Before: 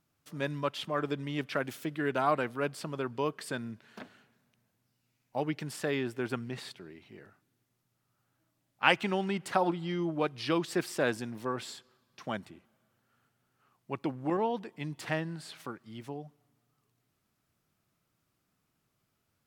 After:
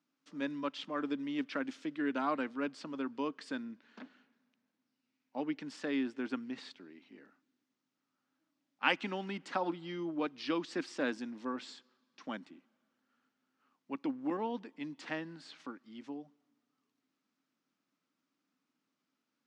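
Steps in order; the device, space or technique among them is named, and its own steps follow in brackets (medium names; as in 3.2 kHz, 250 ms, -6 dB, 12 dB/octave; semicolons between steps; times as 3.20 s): 3.63–5.64 s: treble shelf 8.3 kHz -10.5 dB; television speaker (cabinet simulation 210–6500 Hz, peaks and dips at 270 Hz +10 dB, 390 Hz -5 dB, 680 Hz -5 dB); trim -5 dB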